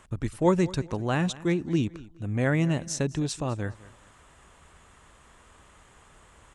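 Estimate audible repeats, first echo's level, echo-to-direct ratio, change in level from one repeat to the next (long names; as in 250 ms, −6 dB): 2, −19.5 dB, −19.0 dB, −11.0 dB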